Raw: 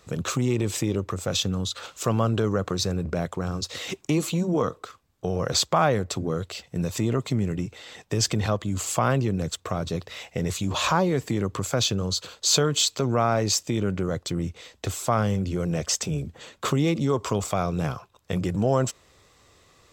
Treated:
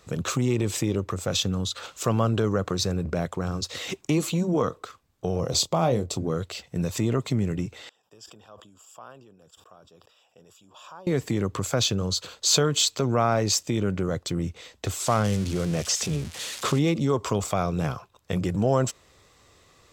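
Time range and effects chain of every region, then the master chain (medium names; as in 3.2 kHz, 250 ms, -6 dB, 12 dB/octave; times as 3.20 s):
5.40–6.17 s: peaking EQ 1.6 kHz -14 dB 1 oct + doubling 24 ms -9 dB
7.89–11.07 s: boxcar filter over 21 samples + differentiator + decay stretcher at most 52 dB/s
15.00–16.79 s: zero-crossing glitches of -20.5 dBFS + low-pass 6.7 kHz
whole clip: none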